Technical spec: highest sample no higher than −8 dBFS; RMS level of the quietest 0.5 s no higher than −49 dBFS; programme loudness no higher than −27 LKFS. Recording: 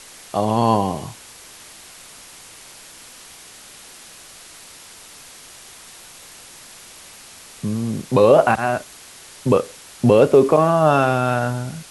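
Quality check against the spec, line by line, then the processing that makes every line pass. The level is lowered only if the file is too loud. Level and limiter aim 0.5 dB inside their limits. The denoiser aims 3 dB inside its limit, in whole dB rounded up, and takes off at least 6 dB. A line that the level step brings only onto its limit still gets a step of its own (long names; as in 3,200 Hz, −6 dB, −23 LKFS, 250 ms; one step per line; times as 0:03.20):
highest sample −2.5 dBFS: out of spec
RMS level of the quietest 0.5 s −42 dBFS: out of spec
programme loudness −18.0 LKFS: out of spec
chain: level −9.5 dB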